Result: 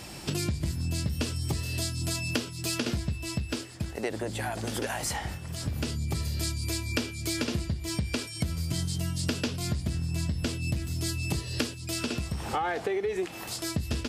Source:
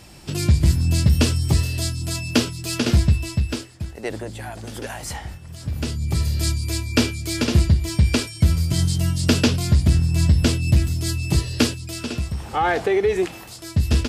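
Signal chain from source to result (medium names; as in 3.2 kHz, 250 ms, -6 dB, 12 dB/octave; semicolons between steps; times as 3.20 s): bass shelf 75 Hz -10.5 dB; compression 6:1, threshold -32 dBFS, peak gain reduction 17.5 dB; trim +4 dB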